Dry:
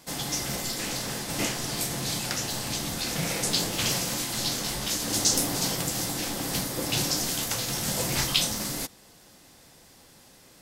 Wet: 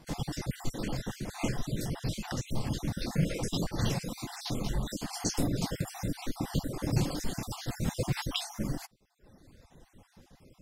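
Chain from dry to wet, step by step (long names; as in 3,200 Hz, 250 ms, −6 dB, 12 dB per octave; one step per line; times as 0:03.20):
time-frequency cells dropped at random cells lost 40%
reverb reduction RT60 1.2 s
spectral tilt −3 dB per octave
level −2.5 dB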